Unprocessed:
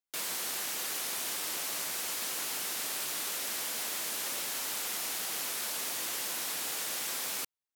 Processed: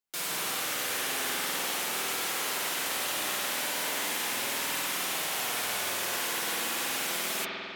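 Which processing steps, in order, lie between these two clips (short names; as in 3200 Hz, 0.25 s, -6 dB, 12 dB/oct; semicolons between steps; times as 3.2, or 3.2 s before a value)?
flange 0.41 Hz, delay 4.6 ms, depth 7.8 ms, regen +39%; spring tank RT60 2.8 s, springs 49 ms, chirp 75 ms, DRR -5 dB; gain +5.5 dB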